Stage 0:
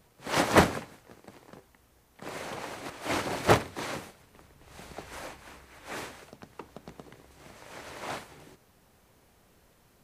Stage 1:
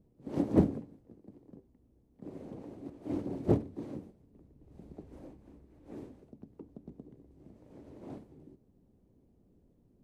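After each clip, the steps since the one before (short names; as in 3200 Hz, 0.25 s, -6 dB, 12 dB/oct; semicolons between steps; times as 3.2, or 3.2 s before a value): EQ curve 140 Hz 0 dB, 280 Hz +5 dB, 1400 Hz -26 dB; gain -2 dB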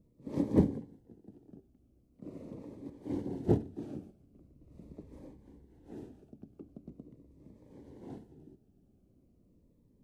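cascading phaser falling 0.42 Hz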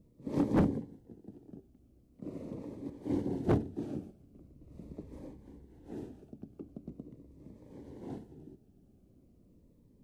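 hard clip -25.5 dBFS, distortion -7 dB; gain +3.5 dB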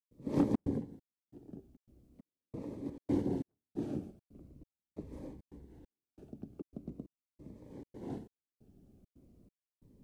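step gate ".xxxx.xxx.." 136 bpm -60 dB; gain +1 dB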